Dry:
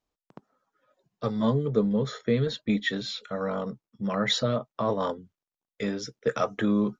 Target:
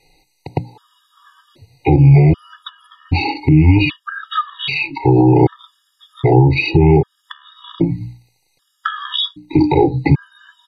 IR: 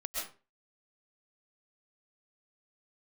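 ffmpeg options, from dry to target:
-filter_complex "[0:a]equalizer=f=100:t=o:w=0.67:g=-11,equalizer=f=250:t=o:w=0.67:g=7,equalizer=f=630:t=o:w=0.67:g=-6,equalizer=f=4k:t=o:w=0.67:g=-4,acompressor=threshold=-30dB:ratio=6,asetrate=28886,aresample=44100,equalizer=f=3.4k:t=o:w=1.7:g=10.5,bandreject=f=60:t=h:w=6,bandreject=f=120:t=h:w=6,bandreject=f=180:t=h:w=6,bandreject=f=240:t=h:w=6,bandreject=f=300:t=h:w=6,aecho=1:1:2.4:0.98,acrossover=split=470[a][b];[b]acompressor=threshold=-45dB:ratio=5[c];[a][c]amix=inputs=2:normalize=0,alimiter=level_in=27.5dB:limit=-1dB:release=50:level=0:latency=1,afftfilt=real='re*gt(sin(2*PI*0.64*pts/sr)*(1-2*mod(floor(b*sr/1024/950),2)),0)':imag='im*gt(sin(2*PI*0.64*pts/sr)*(1-2*mod(floor(b*sr/1024/950),2)),0)':win_size=1024:overlap=0.75,volume=-1dB"

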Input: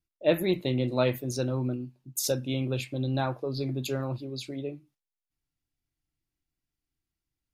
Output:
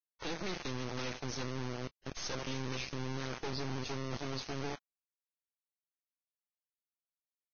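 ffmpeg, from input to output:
-filter_complex "[0:a]asuperstop=centerf=680:order=20:qfactor=2,asplit=2[a][b];[b]adelay=80,highpass=300,lowpass=3.4k,asoftclip=type=hard:threshold=-21.5dB,volume=-13dB[c];[a][c]amix=inputs=2:normalize=0,acompressor=threshold=-32dB:ratio=8,asettb=1/sr,asplit=3[d][e][f];[d]atrim=end=0.464[g];[e]atrim=start=0.46:end=2.9,asetpts=PTS-STARTPTS,afade=t=in:d=0.004:c=qsin,afade=t=out:st=2.436:d=0.004:c=qsin,equalizer=f=2.2k:w=1.1:g=6.5[h];[f]atrim=start=2.896[i];[g][h]acrossfade=d=0.004:c1=hsin:c2=qsin[j];[j][i]acrossfade=d=0.004:c1=qsin:c2=hsin,acrossover=split=130|3000[k][l][m];[k]acompressor=threshold=-44dB:ratio=3[n];[n][l][m]amix=inputs=3:normalize=0,asoftclip=type=tanh:threshold=-38dB,alimiter=level_in=22.5dB:limit=-24dB:level=0:latency=1:release=33,volume=-22.5dB,acrusher=bits=5:dc=4:mix=0:aa=0.000001,volume=11dB" -ar 16000 -c:a libvorbis -b:a 16k

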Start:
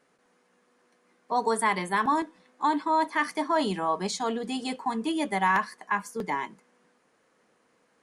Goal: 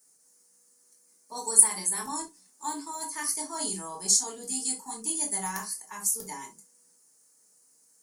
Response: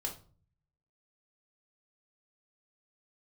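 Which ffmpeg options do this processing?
-filter_complex "[0:a]bass=f=250:g=3,treble=f=4k:g=13,aexciter=amount=11.3:drive=2.5:freq=5.1k[a];[1:a]atrim=start_sample=2205,atrim=end_sample=3528[b];[a][b]afir=irnorm=-1:irlink=0,volume=-13.5dB"

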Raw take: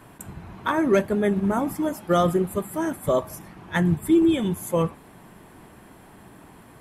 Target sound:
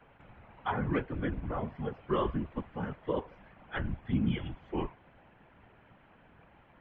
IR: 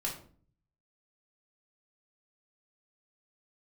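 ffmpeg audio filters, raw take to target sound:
-af "highshelf=f=2.2k:g=8,afftfilt=real='hypot(re,im)*cos(2*PI*random(0))':imag='hypot(re,im)*sin(2*PI*random(1))':win_size=512:overlap=0.75,highpass=f=190:t=q:w=0.5412,highpass=f=190:t=q:w=1.307,lowpass=f=3.1k:t=q:w=0.5176,lowpass=f=3.1k:t=q:w=0.7071,lowpass=f=3.1k:t=q:w=1.932,afreqshift=-150,volume=-5dB"

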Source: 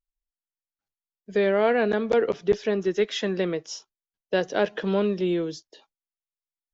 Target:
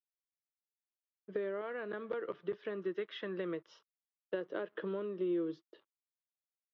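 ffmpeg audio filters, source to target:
-filter_complex "[0:a]asettb=1/sr,asplit=3[a][b][c];[a]atrim=end=1.614[d];[b]atrim=start=1.61:end=4.34,asetpts=PTS-STARTPTS,afade=t=in:d=0.004:c=qsin,afade=t=out:st=2.726:d=0.004:c=qsin,equalizer=f=370:w=0.9:g=-6.5[e];[c]atrim=start=4.336[f];[d][e]acrossfade=d=0.004:c1=hsin:c2=qsin[g];[g][f]acrossfade=d=0.004:c1=qsin:c2=hsin,acompressor=threshold=-29dB:ratio=12,aeval=exprs='sgn(val(0))*max(abs(val(0))-0.00119,0)':c=same,highpass=160,equalizer=f=230:t=q:w=4:g=-6,equalizer=f=340:t=q:w=4:g=8,equalizer=f=530:t=q:w=4:g=3,equalizer=f=760:t=q:w=4:g=-9,equalizer=f=1.2k:t=q:w=4:g=6,equalizer=f=2.4k:t=q:w=4:g=-7,lowpass=f=3k:w=0.5412,lowpass=f=3k:w=1.3066,volume=-6dB"

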